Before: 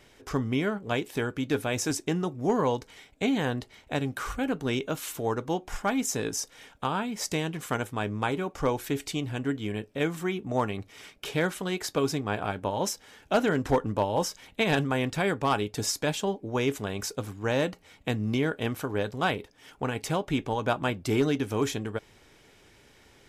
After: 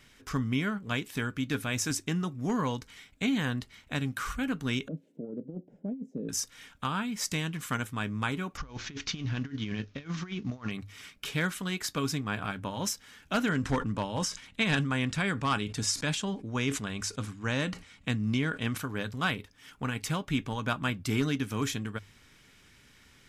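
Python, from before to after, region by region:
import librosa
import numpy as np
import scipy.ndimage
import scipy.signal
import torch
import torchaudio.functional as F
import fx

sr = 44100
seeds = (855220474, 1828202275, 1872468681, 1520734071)

y = fx.chain(x, sr, fx.ellip_bandpass(low_hz=160.0, high_hz=560.0, order=3, stop_db=40),
    fx.over_compress(threshold_db=-31.0, ratio=-0.5), at=(4.88, 6.29))
y = fx.chain(y, sr, fx.cvsd(bps=64000),
    fx.steep_lowpass(hz=6500.0, slope=72),
    fx.over_compress(threshold_db=-33.0, ratio=-0.5), at=(8.57, 10.71))
y = fx.chain(y, sr, fx.lowpass(hz=10000.0, slope=24),
    fx.sustainer(db_per_s=140.0), at=(13.5, 18.78))
y = fx.band_shelf(y, sr, hz=540.0, db=-9.5, octaves=1.7)
y = fx.hum_notches(y, sr, base_hz=50, count=2)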